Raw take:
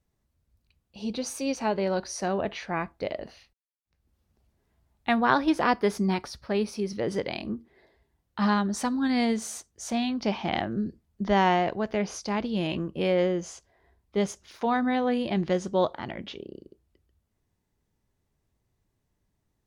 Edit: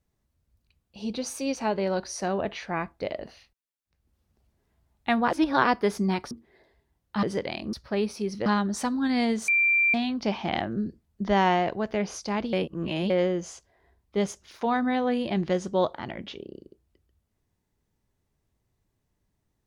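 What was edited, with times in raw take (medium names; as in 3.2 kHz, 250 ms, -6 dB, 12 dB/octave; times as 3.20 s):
5.28–5.64 s: reverse
6.31–7.04 s: swap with 7.54–8.46 s
9.48–9.94 s: bleep 2.36 kHz -18.5 dBFS
12.53–13.10 s: reverse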